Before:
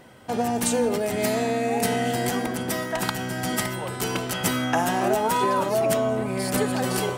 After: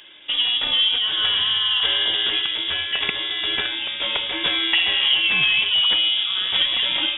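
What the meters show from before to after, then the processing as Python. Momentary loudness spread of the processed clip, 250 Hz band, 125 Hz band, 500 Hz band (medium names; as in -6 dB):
6 LU, -14.0 dB, -15.5 dB, -15.0 dB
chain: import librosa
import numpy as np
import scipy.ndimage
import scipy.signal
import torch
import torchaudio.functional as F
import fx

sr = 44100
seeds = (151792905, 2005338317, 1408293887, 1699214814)

y = fx.freq_invert(x, sr, carrier_hz=3600)
y = fx.hum_notches(y, sr, base_hz=50, count=2)
y = y * librosa.db_to_amplitude(3.5)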